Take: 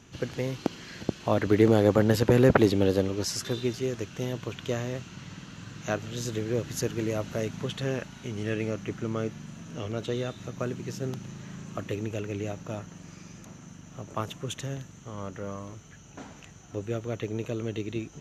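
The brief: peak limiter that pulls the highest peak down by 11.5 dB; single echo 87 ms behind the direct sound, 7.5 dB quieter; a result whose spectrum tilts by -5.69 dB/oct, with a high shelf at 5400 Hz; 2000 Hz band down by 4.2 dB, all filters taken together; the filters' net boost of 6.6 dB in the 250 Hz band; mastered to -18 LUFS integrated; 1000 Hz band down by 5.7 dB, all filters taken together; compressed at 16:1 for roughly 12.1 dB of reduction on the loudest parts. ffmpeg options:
-af "equalizer=f=250:t=o:g=9,equalizer=f=1k:t=o:g=-8.5,equalizer=f=2k:t=o:g=-3.5,highshelf=f=5.4k:g=6.5,acompressor=threshold=-23dB:ratio=16,alimiter=limit=-22dB:level=0:latency=1,aecho=1:1:87:0.422,volume=15dB"

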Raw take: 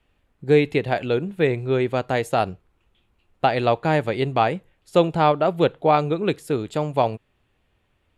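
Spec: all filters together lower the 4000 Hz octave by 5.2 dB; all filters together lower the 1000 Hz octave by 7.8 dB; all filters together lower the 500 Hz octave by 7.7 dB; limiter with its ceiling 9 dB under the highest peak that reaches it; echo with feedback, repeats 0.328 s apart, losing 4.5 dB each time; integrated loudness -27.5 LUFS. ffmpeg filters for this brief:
-af "equalizer=f=500:t=o:g=-7.5,equalizer=f=1k:t=o:g=-7.5,equalizer=f=4k:t=o:g=-6,alimiter=limit=-19dB:level=0:latency=1,aecho=1:1:328|656|984|1312|1640|1968|2296|2624|2952:0.596|0.357|0.214|0.129|0.0772|0.0463|0.0278|0.0167|0.01,volume=1.5dB"

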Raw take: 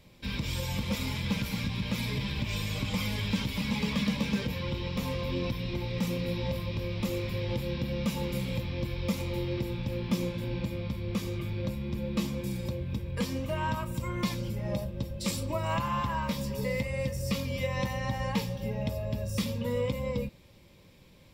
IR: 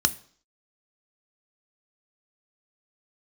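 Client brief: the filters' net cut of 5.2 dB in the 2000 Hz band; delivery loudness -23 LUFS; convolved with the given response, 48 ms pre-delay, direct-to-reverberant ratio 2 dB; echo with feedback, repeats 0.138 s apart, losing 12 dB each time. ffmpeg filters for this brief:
-filter_complex "[0:a]equalizer=f=2k:t=o:g=-6.5,aecho=1:1:138|276|414:0.251|0.0628|0.0157,asplit=2[a][b];[1:a]atrim=start_sample=2205,adelay=48[c];[b][c]afir=irnorm=-1:irlink=0,volume=-13dB[d];[a][d]amix=inputs=2:normalize=0,volume=7dB"

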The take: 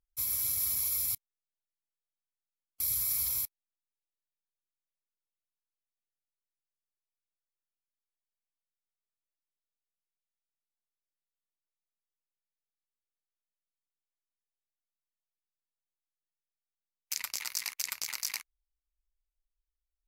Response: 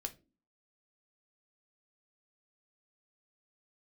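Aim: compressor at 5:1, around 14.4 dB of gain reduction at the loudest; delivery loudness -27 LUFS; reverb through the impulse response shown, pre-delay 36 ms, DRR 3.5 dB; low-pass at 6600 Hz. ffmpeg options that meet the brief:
-filter_complex "[0:a]lowpass=6.6k,acompressor=threshold=-48dB:ratio=5,asplit=2[a][b];[1:a]atrim=start_sample=2205,adelay=36[c];[b][c]afir=irnorm=-1:irlink=0,volume=-1.5dB[d];[a][d]amix=inputs=2:normalize=0,volume=21dB"

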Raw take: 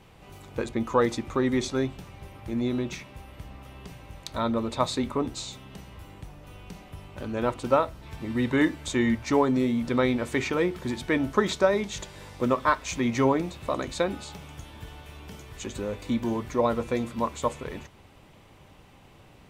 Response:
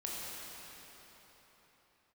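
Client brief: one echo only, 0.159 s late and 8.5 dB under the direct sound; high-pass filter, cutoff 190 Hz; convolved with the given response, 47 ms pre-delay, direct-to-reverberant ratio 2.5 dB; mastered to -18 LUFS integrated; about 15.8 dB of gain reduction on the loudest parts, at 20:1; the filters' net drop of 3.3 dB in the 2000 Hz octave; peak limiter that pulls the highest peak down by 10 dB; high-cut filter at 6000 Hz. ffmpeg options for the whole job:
-filter_complex "[0:a]highpass=190,lowpass=6k,equalizer=f=2k:t=o:g=-4,acompressor=threshold=-32dB:ratio=20,alimiter=level_in=4dB:limit=-24dB:level=0:latency=1,volume=-4dB,aecho=1:1:159:0.376,asplit=2[a][b];[1:a]atrim=start_sample=2205,adelay=47[c];[b][c]afir=irnorm=-1:irlink=0,volume=-5dB[d];[a][d]amix=inputs=2:normalize=0,volume=20dB"

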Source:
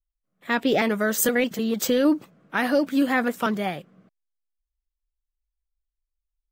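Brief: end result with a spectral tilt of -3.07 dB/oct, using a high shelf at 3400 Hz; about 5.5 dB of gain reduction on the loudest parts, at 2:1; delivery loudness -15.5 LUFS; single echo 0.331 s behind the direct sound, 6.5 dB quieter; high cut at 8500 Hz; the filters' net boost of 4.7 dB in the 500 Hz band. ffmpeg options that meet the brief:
-af "lowpass=8.5k,equalizer=f=500:t=o:g=5,highshelf=f=3.4k:g=8,acompressor=threshold=-23dB:ratio=2,aecho=1:1:331:0.473,volume=8.5dB"

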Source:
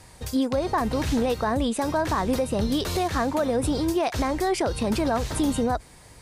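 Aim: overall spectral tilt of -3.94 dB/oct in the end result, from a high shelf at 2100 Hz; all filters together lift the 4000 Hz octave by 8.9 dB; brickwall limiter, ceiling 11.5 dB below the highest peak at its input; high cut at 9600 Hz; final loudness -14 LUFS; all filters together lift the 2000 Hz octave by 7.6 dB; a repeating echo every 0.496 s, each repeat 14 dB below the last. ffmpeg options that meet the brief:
-af "lowpass=9.6k,equalizer=f=2k:t=o:g=6,highshelf=f=2.1k:g=4.5,equalizer=f=4k:t=o:g=5,alimiter=limit=-20.5dB:level=0:latency=1,aecho=1:1:496|992:0.2|0.0399,volume=15dB"

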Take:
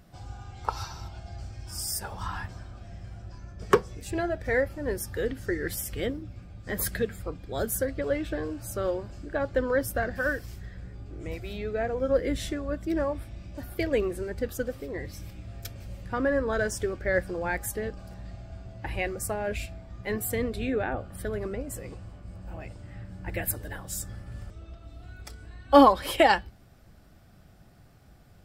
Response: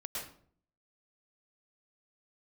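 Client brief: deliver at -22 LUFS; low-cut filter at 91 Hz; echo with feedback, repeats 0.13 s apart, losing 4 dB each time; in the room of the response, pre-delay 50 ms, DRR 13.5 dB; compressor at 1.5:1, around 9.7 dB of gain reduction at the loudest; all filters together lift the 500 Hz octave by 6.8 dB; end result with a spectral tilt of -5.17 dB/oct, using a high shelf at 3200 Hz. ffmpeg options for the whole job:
-filter_complex "[0:a]highpass=91,equalizer=f=500:t=o:g=8,highshelf=f=3.2k:g=-4,acompressor=threshold=-34dB:ratio=1.5,aecho=1:1:130|260|390|520|650|780|910|1040|1170:0.631|0.398|0.25|0.158|0.0994|0.0626|0.0394|0.0249|0.0157,asplit=2[a][b];[1:a]atrim=start_sample=2205,adelay=50[c];[b][c]afir=irnorm=-1:irlink=0,volume=-14.5dB[d];[a][d]amix=inputs=2:normalize=0,volume=7.5dB"

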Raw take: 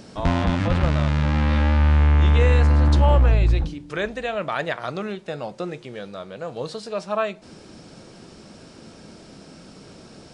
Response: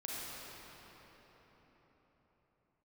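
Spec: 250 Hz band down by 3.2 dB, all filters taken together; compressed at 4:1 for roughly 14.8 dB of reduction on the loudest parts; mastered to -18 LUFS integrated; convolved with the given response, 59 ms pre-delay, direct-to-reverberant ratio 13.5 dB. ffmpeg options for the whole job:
-filter_complex "[0:a]equalizer=f=250:t=o:g=-4.5,acompressor=threshold=-32dB:ratio=4,asplit=2[a][b];[1:a]atrim=start_sample=2205,adelay=59[c];[b][c]afir=irnorm=-1:irlink=0,volume=-15dB[d];[a][d]amix=inputs=2:normalize=0,volume=17.5dB"

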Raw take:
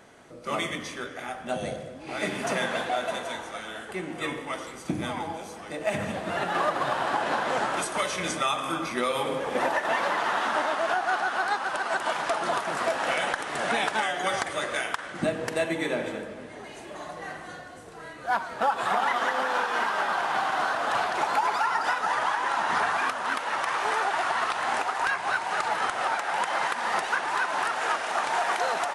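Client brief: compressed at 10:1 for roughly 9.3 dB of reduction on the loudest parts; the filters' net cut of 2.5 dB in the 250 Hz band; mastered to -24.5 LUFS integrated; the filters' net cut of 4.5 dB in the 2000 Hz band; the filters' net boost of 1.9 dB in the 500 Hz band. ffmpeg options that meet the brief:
-af "equalizer=f=250:t=o:g=-5,equalizer=f=500:t=o:g=4,equalizer=f=2k:t=o:g=-6.5,acompressor=threshold=-30dB:ratio=10,volume=10dB"

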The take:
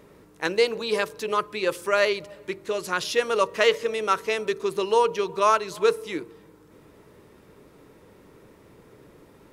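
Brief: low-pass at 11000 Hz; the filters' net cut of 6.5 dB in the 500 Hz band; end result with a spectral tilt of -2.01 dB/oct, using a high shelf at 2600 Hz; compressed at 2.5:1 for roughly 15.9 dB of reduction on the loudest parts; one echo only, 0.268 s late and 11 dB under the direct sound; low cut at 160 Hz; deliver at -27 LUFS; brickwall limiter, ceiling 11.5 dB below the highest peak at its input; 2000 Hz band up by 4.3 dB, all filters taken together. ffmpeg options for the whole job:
-af "highpass=160,lowpass=11k,equalizer=f=500:t=o:g=-8,equalizer=f=2k:t=o:g=4.5,highshelf=f=2.6k:g=3,acompressor=threshold=-40dB:ratio=2.5,alimiter=level_in=5dB:limit=-24dB:level=0:latency=1,volume=-5dB,aecho=1:1:268:0.282,volume=14dB"

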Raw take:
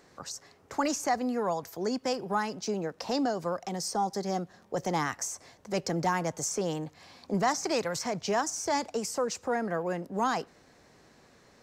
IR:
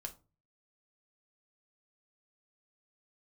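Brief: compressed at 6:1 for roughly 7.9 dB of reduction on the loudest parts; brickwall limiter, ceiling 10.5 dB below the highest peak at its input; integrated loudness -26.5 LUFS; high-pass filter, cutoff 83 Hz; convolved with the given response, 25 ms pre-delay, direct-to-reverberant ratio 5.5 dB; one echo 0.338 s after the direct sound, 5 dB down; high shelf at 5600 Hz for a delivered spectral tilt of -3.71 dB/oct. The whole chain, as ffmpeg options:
-filter_complex "[0:a]highpass=83,highshelf=f=5.6k:g=3.5,acompressor=threshold=-32dB:ratio=6,alimiter=level_in=7dB:limit=-24dB:level=0:latency=1,volume=-7dB,aecho=1:1:338:0.562,asplit=2[a][b];[1:a]atrim=start_sample=2205,adelay=25[c];[b][c]afir=irnorm=-1:irlink=0,volume=-2.5dB[d];[a][d]amix=inputs=2:normalize=0,volume=11.5dB"

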